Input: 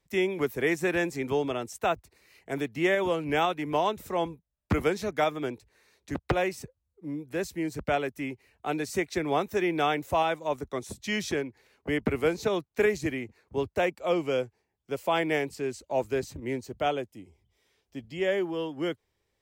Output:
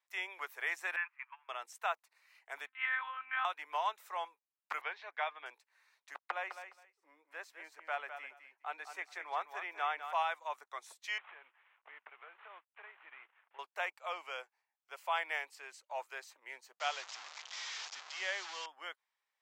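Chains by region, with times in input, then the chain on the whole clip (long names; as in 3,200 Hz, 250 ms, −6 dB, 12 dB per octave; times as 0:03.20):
0:00.96–0:01.49: converter with a step at zero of −40 dBFS + Chebyshev band-pass filter 1,000–2,600 Hz, order 3 + noise gate −41 dBFS, range −17 dB
0:02.67–0:03.45: downward compressor 4 to 1, threshold −26 dBFS + one-pitch LPC vocoder at 8 kHz 260 Hz + drawn EQ curve 230 Hz 0 dB, 360 Hz −26 dB, 1,100 Hz +5 dB, 1,500 Hz +9 dB, 2,500 Hz +2 dB, 4,600 Hz −3 dB
0:04.81–0:05.46: low-pass filter 3,700 Hz 24 dB per octave + low-shelf EQ 320 Hz −7 dB + notch filter 1,300 Hz, Q 8.5
0:06.29–0:10.13: high-shelf EQ 3,300 Hz −10 dB + repeating echo 207 ms, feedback 17%, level −9.5 dB
0:11.18–0:13.59: variable-slope delta modulation 16 kbit/s + downward compressor 3 to 1, threshold −41 dBFS
0:16.80–0:18.66: linear delta modulator 64 kbit/s, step −33 dBFS + Butterworth low-pass 7,400 Hz 72 dB per octave + parametric band 5,200 Hz +9 dB 1.6 octaves
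whole clip: high-pass filter 920 Hz 24 dB per octave; high-shelf EQ 2,700 Hz −11.5 dB; level −1 dB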